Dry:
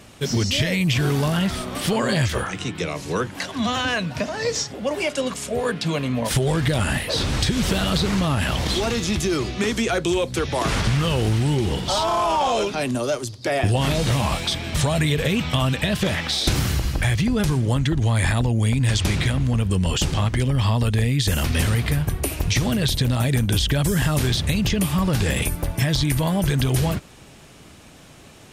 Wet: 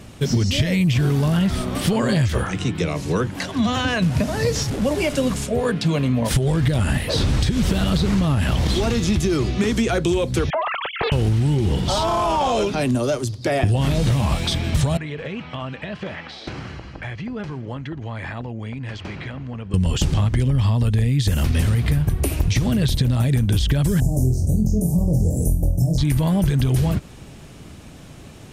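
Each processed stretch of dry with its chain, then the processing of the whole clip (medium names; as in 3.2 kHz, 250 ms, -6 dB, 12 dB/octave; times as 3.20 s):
4.02–5.45 s: one-bit delta coder 64 kbps, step -27.5 dBFS + bass shelf 170 Hz +9.5 dB
10.50–11.12 s: formants replaced by sine waves + compression 5:1, threshold -20 dBFS + loudspeaker Doppler distortion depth 0.67 ms
14.97–19.74 s: high-pass 1.1 kHz 6 dB/octave + tape spacing loss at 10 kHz 34 dB + band-stop 3.6 kHz, Q 11
24.00–25.98 s: elliptic band-stop 700–6200 Hz + flutter echo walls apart 4 m, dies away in 0.32 s
whole clip: bass shelf 340 Hz +9 dB; compression, threshold -15 dBFS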